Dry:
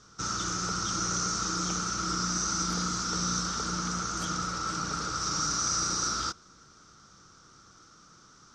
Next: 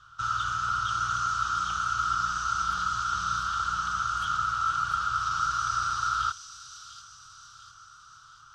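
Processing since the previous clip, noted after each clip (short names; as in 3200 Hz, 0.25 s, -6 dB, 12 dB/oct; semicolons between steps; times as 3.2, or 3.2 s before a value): EQ curve 120 Hz 0 dB, 200 Hz -21 dB, 430 Hz -21 dB, 1400 Hz +9 dB, 2100 Hz -10 dB, 3000 Hz +7 dB, 5600 Hz -14 dB, 10000 Hz -5 dB; thin delay 0.697 s, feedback 49%, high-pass 4700 Hz, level -3.5 dB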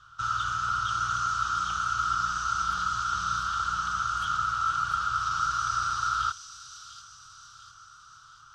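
nothing audible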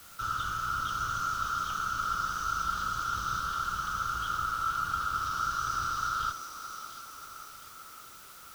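octaver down 1 oct, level +1 dB; requantised 8-bit, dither triangular; band-limited delay 0.577 s, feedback 58%, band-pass 540 Hz, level -6.5 dB; gain -4 dB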